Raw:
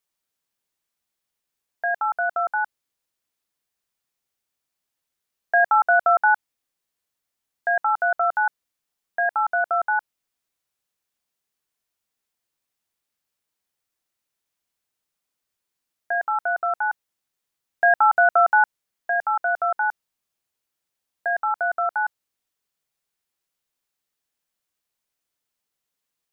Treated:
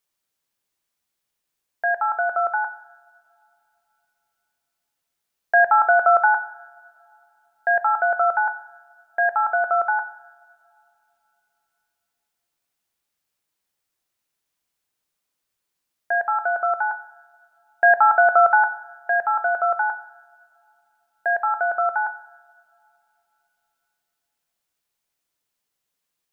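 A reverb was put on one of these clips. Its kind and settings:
coupled-rooms reverb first 0.79 s, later 3.2 s, from −20 dB, DRR 11.5 dB
level +2 dB

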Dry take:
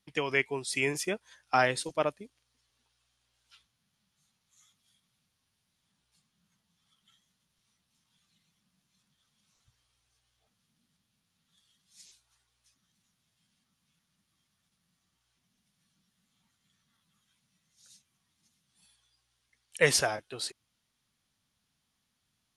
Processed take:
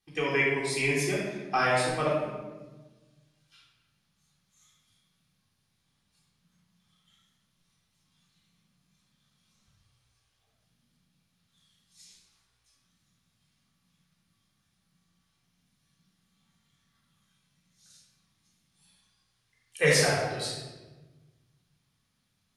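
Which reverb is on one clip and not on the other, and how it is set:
rectangular room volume 800 cubic metres, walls mixed, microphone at 3.7 metres
level −5 dB

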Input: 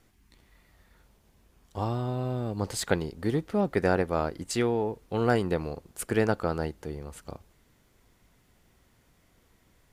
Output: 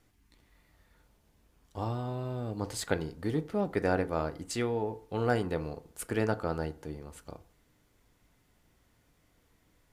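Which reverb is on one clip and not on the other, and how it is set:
feedback delay network reverb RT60 0.44 s, low-frequency decay 0.9×, high-frequency decay 0.5×, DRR 10.5 dB
level −4.5 dB

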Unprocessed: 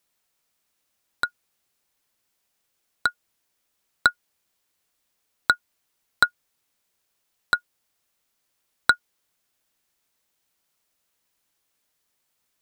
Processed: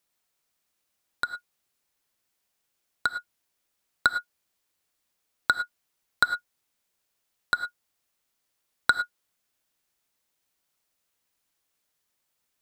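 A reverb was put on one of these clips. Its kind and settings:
reverb whose tail is shaped and stops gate 130 ms rising, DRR 10.5 dB
level −3.5 dB

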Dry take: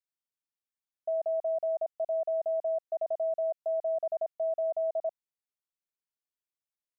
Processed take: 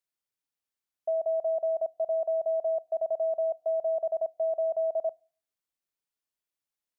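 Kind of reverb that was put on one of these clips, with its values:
feedback delay network reverb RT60 0.43 s, low-frequency decay 1.25×, high-frequency decay 0.95×, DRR 20 dB
level +2.5 dB

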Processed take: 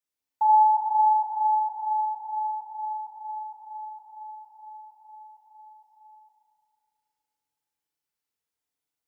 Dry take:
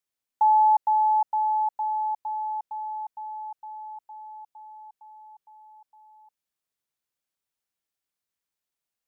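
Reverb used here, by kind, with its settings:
feedback delay network reverb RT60 2.5 s, low-frequency decay 0.8×, high-frequency decay 0.75×, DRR −5 dB
level −6.5 dB

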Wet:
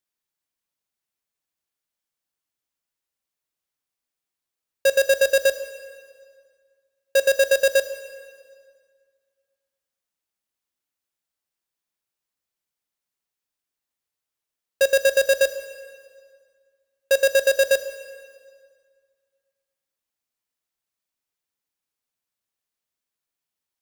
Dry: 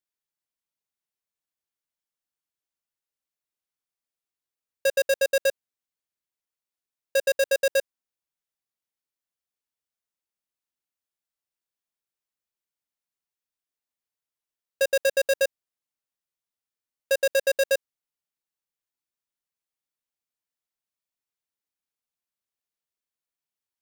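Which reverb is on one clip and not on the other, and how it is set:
dense smooth reverb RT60 1.9 s, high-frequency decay 0.85×, DRR 10 dB
level +4 dB

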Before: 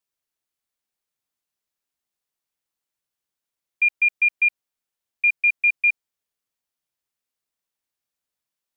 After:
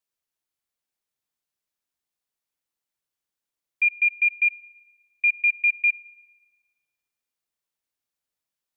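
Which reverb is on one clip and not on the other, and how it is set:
feedback delay network reverb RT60 3.1 s, high-frequency decay 0.25×, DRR 15 dB
level −2 dB

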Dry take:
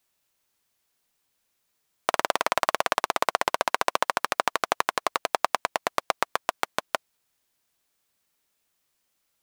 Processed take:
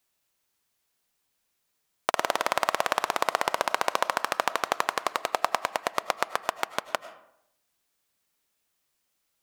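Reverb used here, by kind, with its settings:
comb and all-pass reverb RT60 0.76 s, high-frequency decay 0.55×, pre-delay 60 ms, DRR 14 dB
level −1.5 dB

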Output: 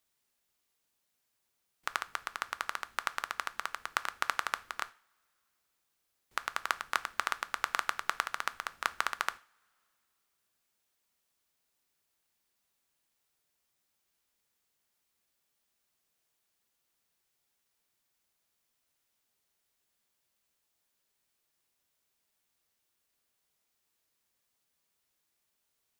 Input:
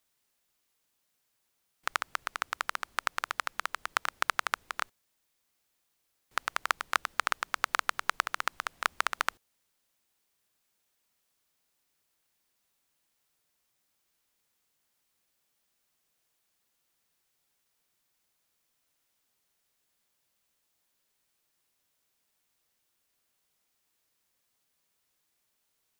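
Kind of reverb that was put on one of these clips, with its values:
coupled-rooms reverb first 0.37 s, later 2.6 s, from −28 dB, DRR 13.5 dB
level −3 dB

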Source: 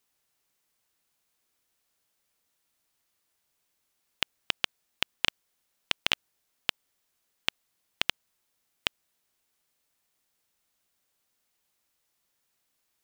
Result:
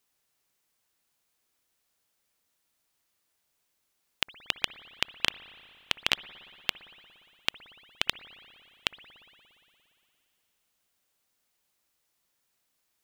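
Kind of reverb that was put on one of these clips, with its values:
spring reverb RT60 2.8 s, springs 58 ms, chirp 55 ms, DRR 15.5 dB

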